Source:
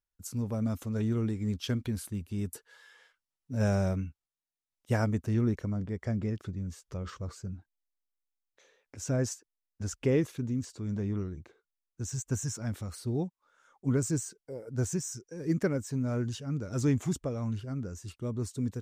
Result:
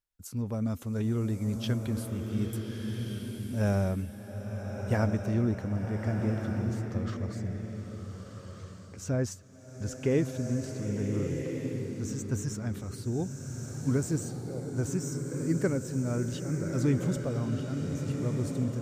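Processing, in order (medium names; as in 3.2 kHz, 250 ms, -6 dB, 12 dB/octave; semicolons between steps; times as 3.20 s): dynamic bell 7 kHz, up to -4 dB, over -54 dBFS, Q 1.1; swelling reverb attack 1460 ms, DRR 3 dB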